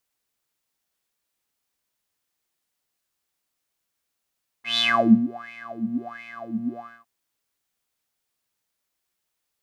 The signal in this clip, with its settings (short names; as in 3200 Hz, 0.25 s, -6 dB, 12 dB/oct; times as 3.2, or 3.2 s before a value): synth patch with filter wobble A#3, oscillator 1 square, oscillator 2 level -14.5 dB, sub -4 dB, filter bandpass, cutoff 340 Hz, Q 11, filter envelope 2.5 oct, attack 0.139 s, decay 0.47 s, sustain -22 dB, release 0.28 s, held 2.13 s, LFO 1.4 Hz, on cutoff 1.8 oct